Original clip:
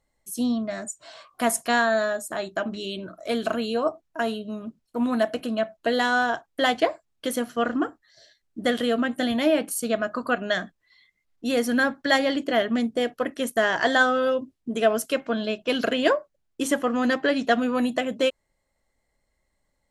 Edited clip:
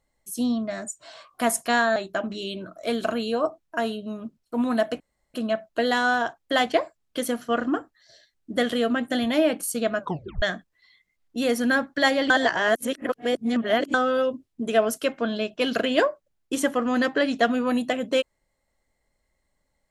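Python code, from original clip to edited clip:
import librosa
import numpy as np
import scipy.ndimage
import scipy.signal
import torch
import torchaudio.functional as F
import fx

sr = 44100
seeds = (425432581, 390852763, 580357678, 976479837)

y = fx.edit(x, sr, fx.cut(start_s=1.96, length_s=0.42),
    fx.insert_room_tone(at_s=5.42, length_s=0.34),
    fx.tape_stop(start_s=10.08, length_s=0.42),
    fx.reverse_span(start_s=12.38, length_s=1.64), tone=tone)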